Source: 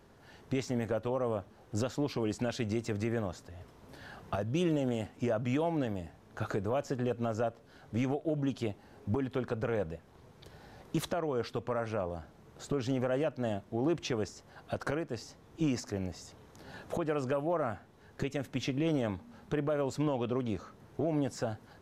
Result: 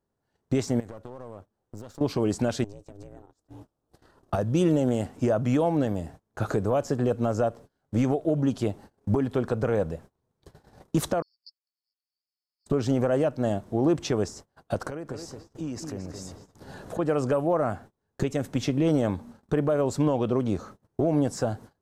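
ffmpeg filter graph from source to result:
ffmpeg -i in.wav -filter_complex "[0:a]asettb=1/sr,asplit=3[link_01][link_02][link_03];[link_01]atrim=end=0.804[link_04];[link_02]atrim=start=0.8:end=2.01,asetpts=PTS-STARTPTS,afade=type=in:duration=0.004:curve=qsin,afade=type=out:start_time=1.206:duration=0.004:curve=qsin,acompressor=threshold=-42dB:ratio=16:attack=3.2:release=140:knee=1:detection=peak,aeval=exprs='clip(val(0),-1,0.00168)':channel_layout=same[link_05];[link_03]atrim=start=2.006[link_06];[link_04][link_05]acrossfade=duration=0.004:curve1=hsin:curve2=qsin[link_07];[link_07][link_06]acrossfade=duration=0.004:curve1=qsin:curve2=hsin,asettb=1/sr,asplit=3[link_08][link_09][link_10];[link_08]atrim=end=2.644[link_11];[link_09]atrim=start=2.64:end=4.33,asetpts=PTS-STARTPTS,afade=type=in:duration=0.004:curve=qsin,afade=type=out:start_time=1.686:duration=0.004:curve=qsin,equalizer=frequency=2000:width=4.7:gain=-11.5,acompressor=threshold=-44dB:ratio=12:attack=3.2:release=140:knee=1:detection=peak,aeval=exprs='val(0)*sin(2*PI*200*n/s)':channel_layout=same[link_12];[link_10]atrim=start=4.326[link_13];[link_11][link_12]acrossfade=duration=0.004:curve1=hsin:curve2=qsin[link_14];[link_14][link_13]acrossfade=duration=0.004:curve1=qsin:curve2=hsin,asettb=1/sr,asplit=3[link_15][link_16][link_17];[link_15]atrim=end=11.224[link_18];[link_16]atrim=start=11.22:end=12.66,asetpts=PTS-STARTPTS,afade=type=in:duration=0.004:curve=qsin,afade=type=out:start_time=1.436:duration=0.004:curve=qsin,asuperpass=centerf=4800:order=20:qfactor=4.3,acompressor=mode=upward:threshold=-60dB:ratio=2.5:attack=3.2:release=140:knee=2.83:detection=peak[link_19];[link_17]atrim=start=12.656[link_20];[link_18][link_19]acrossfade=duration=0.004:curve1=hsin:curve2=qsin[link_21];[link_21][link_20]acrossfade=duration=0.004:curve1=qsin:curve2=hsin,asettb=1/sr,asplit=3[link_22][link_23][link_24];[link_22]atrim=end=14.874[link_25];[link_23]atrim=start=14.87:end=16.99,asetpts=PTS-STARTPTS,afade=type=in:duration=0.004:curve=qsin,afade=type=out:start_time=2.116:duration=0.004:curve=qsin,acompressor=threshold=-46dB:ratio=2:attack=3.2:release=140:knee=1:detection=peak,asplit=2[link_26][link_27];[link_27]adelay=220,lowpass=frequency=2700:poles=1,volume=-5.5dB,asplit=2[link_28][link_29];[link_29]adelay=220,lowpass=frequency=2700:poles=1,volume=0.32,asplit=2[link_30][link_31];[link_31]adelay=220,lowpass=frequency=2700:poles=1,volume=0.32,asplit=2[link_32][link_33];[link_33]adelay=220,lowpass=frequency=2700:poles=1,volume=0.32[link_34];[link_26][link_28][link_30][link_32][link_34]amix=inputs=5:normalize=0,atrim=end_sample=93492[link_35];[link_24]atrim=start=16.986[link_36];[link_25][link_35]acrossfade=duration=0.004:curve1=hsin:curve2=qsin[link_37];[link_37][link_36]acrossfade=duration=0.004:curve1=qsin:curve2=hsin,equalizer=frequency=2500:width=0.86:gain=-7,agate=range=-29dB:threshold=-51dB:ratio=16:detection=peak,equalizer=frequency=8400:width=3.2:gain=4,volume=8dB" out.wav

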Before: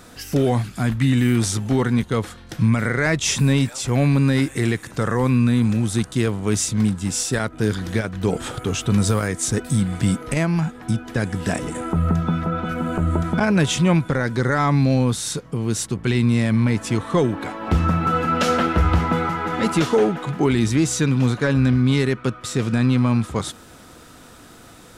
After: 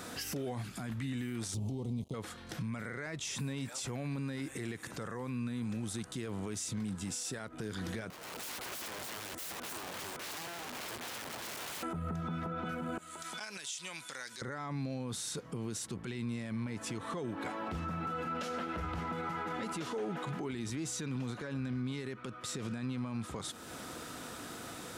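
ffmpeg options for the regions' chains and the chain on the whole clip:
ffmpeg -i in.wav -filter_complex "[0:a]asettb=1/sr,asplit=3[link_01][link_02][link_03];[link_01]atrim=end=1.544[link_04];[link_02]atrim=start=1.54:end=2.14,asetpts=PTS-STARTPTS,afade=type=in:duration=0.004:curve=qsin,afade=type=out:start_time=0.596:duration=0.004:curve=qsin,equalizer=frequency=79:width_type=o:width=2.7:gain=12.5,aeval=exprs='sgn(val(0))*max(abs(val(0))-0.0266,0)':channel_layout=same,asuperstop=centerf=1600:order=4:qfactor=0.76[link_05];[link_03]atrim=start=2.136[link_06];[link_04][link_05]acrossfade=duration=0.004:curve1=hsin:curve2=qsin[link_07];[link_07][link_06]acrossfade=duration=0.004:curve1=qsin:curve2=hsin,asettb=1/sr,asplit=3[link_08][link_09][link_10];[link_08]atrim=end=8.104[link_11];[link_09]atrim=start=8.1:end=11.83,asetpts=PTS-STARTPTS,afade=type=in:duration=0.004:curve=qsin,afade=type=out:start_time=3.726:duration=0.004:curve=qsin,highshelf=frequency=4600:gain=-8,acompressor=threshold=-31dB:ratio=20:attack=3.2:release=140:knee=1:detection=peak,aeval=exprs='(mod(79.4*val(0)+1,2)-1)/79.4':channel_layout=same[link_12];[link_10]atrim=start=11.826[link_13];[link_11][link_12]acrossfade=duration=0.004:curve1=hsin:curve2=qsin[link_14];[link_14][link_13]acrossfade=duration=0.004:curve1=qsin:curve2=hsin,asettb=1/sr,asplit=3[link_15][link_16][link_17];[link_15]atrim=end=12.984[link_18];[link_16]atrim=start=12.98:end=14.42,asetpts=PTS-STARTPTS,afade=type=in:duration=0.004:curve=qsin,afade=type=out:start_time=1.436:duration=0.004:curve=qsin,bandpass=frequency=5700:width_type=q:width=0.92,highshelf=frequency=6600:gain=11.5,acompressor=threshold=-38dB:ratio=4:attack=3.2:release=140:knee=1:detection=peak[link_19];[link_17]atrim=start=14.416[link_20];[link_18][link_19]acrossfade=duration=0.004:curve1=hsin:curve2=qsin[link_21];[link_21][link_20]acrossfade=duration=0.004:curve1=qsin:curve2=hsin,highpass=frequency=160:poles=1,acompressor=threshold=-39dB:ratio=2,alimiter=level_in=7dB:limit=-24dB:level=0:latency=1:release=54,volume=-7dB,volume=1dB" out.wav

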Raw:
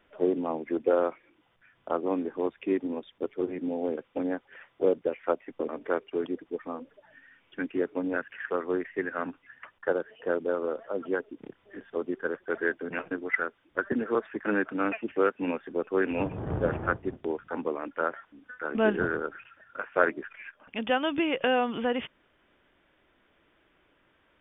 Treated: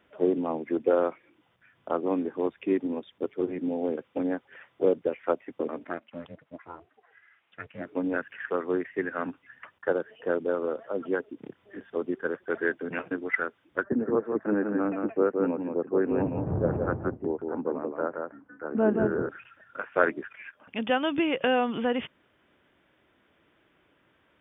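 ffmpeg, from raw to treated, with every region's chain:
ffmpeg -i in.wav -filter_complex "[0:a]asettb=1/sr,asplit=3[link_01][link_02][link_03];[link_01]atrim=end=5.844[link_04];[link_02]atrim=start=5.84:end=7.86,asetpts=PTS-STARTPTS,afade=type=in:duration=0.004:curve=qsin,afade=type=out:start_time=2.016:duration=0.004:curve=qsin,highpass=650,lowpass=3100,aeval=exprs='val(0)*sin(2*PI*170*n/s)':channel_layout=same[link_05];[link_03]atrim=start=7.856[link_06];[link_04][link_05]acrossfade=duration=0.004:curve1=hsin:curve2=qsin[link_07];[link_07][link_06]acrossfade=duration=0.004:curve1=qsin:curve2=hsin,asettb=1/sr,asplit=3[link_08][link_09][link_10];[link_08]atrim=end=13.834[link_11];[link_09]atrim=start=13.83:end=19.29,asetpts=PTS-STARTPTS,afade=type=in:duration=0.004:curve=qsin,afade=type=out:start_time=5.456:duration=0.004:curve=qsin,lowpass=1000,aecho=1:1:171:0.596,atrim=end_sample=240786[link_12];[link_10]atrim=start=19.286[link_13];[link_11][link_12]acrossfade=duration=0.004:curve1=hsin:curve2=qsin[link_14];[link_14][link_13]acrossfade=duration=0.004:curve1=qsin:curve2=hsin,highpass=88,lowshelf=frequency=210:gain=5.5" out.wav

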